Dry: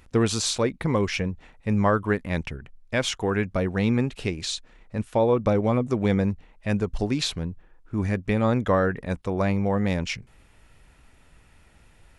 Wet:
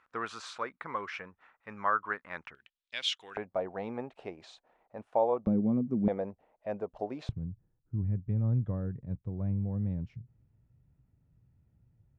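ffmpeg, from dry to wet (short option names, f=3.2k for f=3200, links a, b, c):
-af "asetnsamples=n=441:p=0,asendcmd='2.55 bandpass f 3400;3.37 bandpass f 730;5.47 bandpass f 210;6.08 bandpass f 640;7.29 bandpass f 120',bandpass=f=1.3k:t=q:w=2.8:csg=0"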